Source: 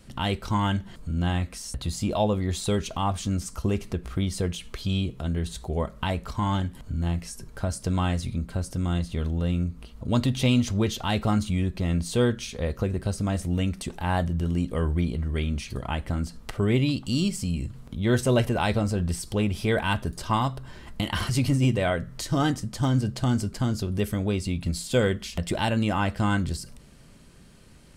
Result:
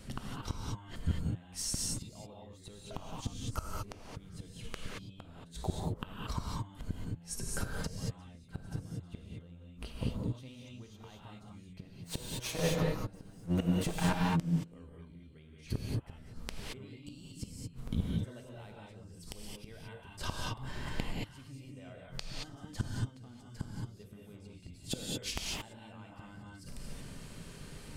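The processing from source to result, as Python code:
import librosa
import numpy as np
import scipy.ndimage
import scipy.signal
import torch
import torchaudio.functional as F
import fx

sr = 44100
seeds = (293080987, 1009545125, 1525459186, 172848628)

y = fx.lower_of_two(x, sr, delay_ms=6.3, at=(11.87, 14.55))
y = fx.gate_flip(y, sr, shuts_db=-22.0, range_db=-31)
y = fx.rev_gated(y, sr, seeds[0], gate_ms=250, shape='rising', drr_db=-2.0)
y = F.gain(torch.from_numpy(y), 1.0).numpy()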